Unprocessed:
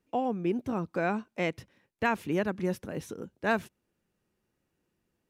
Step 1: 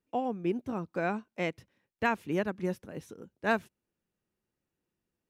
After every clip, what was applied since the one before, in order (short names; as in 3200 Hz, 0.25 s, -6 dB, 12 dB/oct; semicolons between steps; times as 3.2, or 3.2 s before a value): upward expander 1.5:1, over -39 dBFS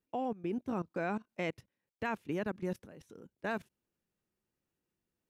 level quantiser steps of 18 dB; gain +2 dB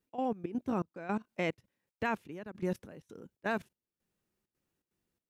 step gate "x.xxx.xxx...xxxx" 165 bpm -12 dB; gain +3 dB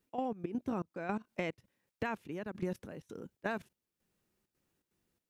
compressor 6:1, threshold -36 dBFS, peak gain reduction 8.5 dB; gain +3.5 dB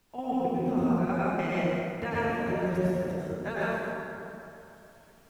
chorus voices 6, 0.75 Hz, delay 12 ms, depth 1.3 ms; added noise pink -73 dBFS; plate-style reverb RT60 2.9 s, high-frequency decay 0.55×, pre-delay 85 ms, DRR -9 dB; gain +3 dB